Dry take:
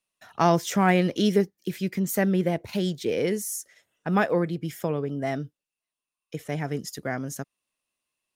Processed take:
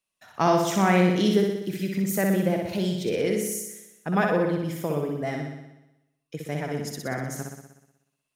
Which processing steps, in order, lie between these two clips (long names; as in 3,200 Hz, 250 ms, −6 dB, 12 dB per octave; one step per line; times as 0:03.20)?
flutter between parallel walls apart 10.5 metres, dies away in 0.93 s
level −1.5 dB